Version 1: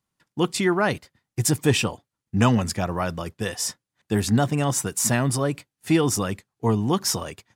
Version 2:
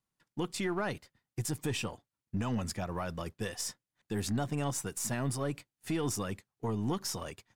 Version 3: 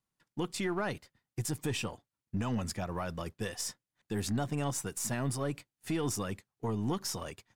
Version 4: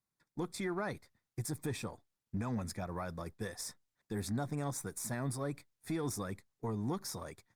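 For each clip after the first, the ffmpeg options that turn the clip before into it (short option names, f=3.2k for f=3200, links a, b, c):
-af "aeval=exprs='if(lt(val(0),0),0.708*val(0),val(0))':c=same,alimiter=limit=-18.5dB:level=0:latency=1:release=153,volume=-6dB"
-af anull
-af "asuperstop=centerf=2900:order=4:qfactor=3.3,volume=-3.5dB" -ar 48000 -c:a libopus -b:a 48k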